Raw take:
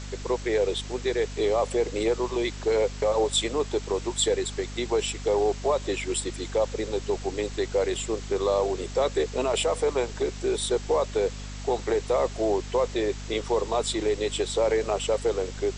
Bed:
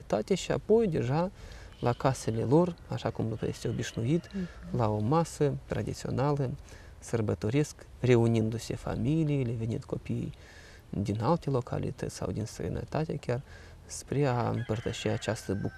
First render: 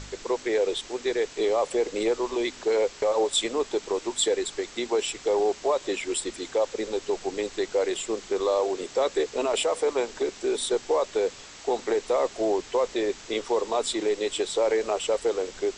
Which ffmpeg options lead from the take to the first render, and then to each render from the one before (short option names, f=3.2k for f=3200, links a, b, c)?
-af "bandreject=f=50:t=h:w=4,bandreject=f=100:t=h:w=4,bandreject=f=150:t=h:w=4,bandreject=f=200:t=h:w=4,bandreject=f=250:t=h:w=4"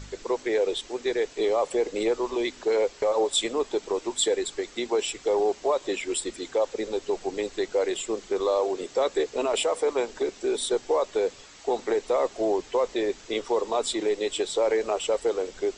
-af "afftdn=nr=6:nf=-45"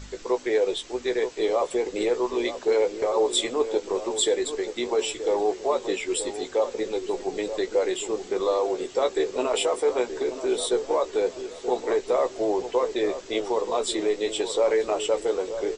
-filter_complex "[0:a]asplit=2[a][b];[b]adelay=16,volume=-7.5dB[c];[a][c]amix=inputs=2:normalize=0,asplit=2[d][e];[e]adelay=929,lowpass=f=1k:p=1,volume=-9.5dB,asplit=2[f][g];[g]adelay=929,lowpass=f=1k:p=1,volume=0.46,asplit=2[h][i];[i]adelay=929,lowpass=f=1k:p=1,volume=0.46,asplit=2[j][k];[k]adelay=929,lowpass=f=1k:p=1,volume=0.46,asplit=2[l][m];[m]adelay=929,lowpass=f=1k:p=1,volume=0.46[n];[f][h][j][l][n]amix=inputs=5:normalize=0[o];[d][o]amix=inputs=2:normalize=0"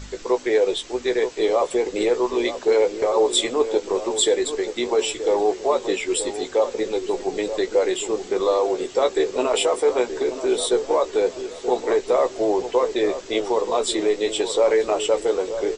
-af "volume=4dB"